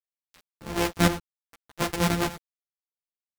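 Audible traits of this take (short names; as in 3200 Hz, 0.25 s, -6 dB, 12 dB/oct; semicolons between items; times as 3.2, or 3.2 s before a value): a buzz of ramps at a fixed pitch in blocks of 256 samples; chopped level 3 Hz, depth 65%, duty 20%; a quantiser's noise floor 8-bit, dither none; a shimmering, thickened sound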